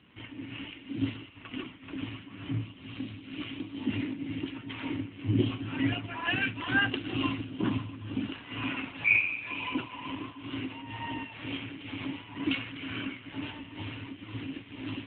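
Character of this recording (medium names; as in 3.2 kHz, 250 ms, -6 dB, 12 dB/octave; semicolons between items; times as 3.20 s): tremolo triangle 2.1 Hz, depth 75%; AMR-NB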